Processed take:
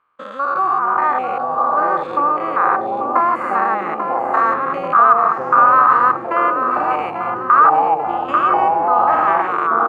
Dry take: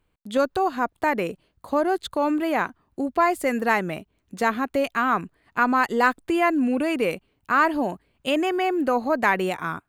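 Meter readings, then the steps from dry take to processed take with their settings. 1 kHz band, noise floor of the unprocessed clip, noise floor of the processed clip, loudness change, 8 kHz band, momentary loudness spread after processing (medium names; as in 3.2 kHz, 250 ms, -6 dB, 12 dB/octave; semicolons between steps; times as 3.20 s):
+12.0 dB, -71 dBFS, -27 dBFS, +8.0 dB, under -15 dB, 9 LU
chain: spectrogram pixelated in time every 200 ms; compression 3:1, threshold -26 dBFS, peak gain reduction 6 dB; band-pass filter 1.2 kHz, Q 10; on a send: feedback delay 840 ms, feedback 44%, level -8 dB; on the sum: ever faster or slower copies 259 ms, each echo -7 st, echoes 3, each echo -6 dB; loudness maximiser +28 dB; trim -1 dB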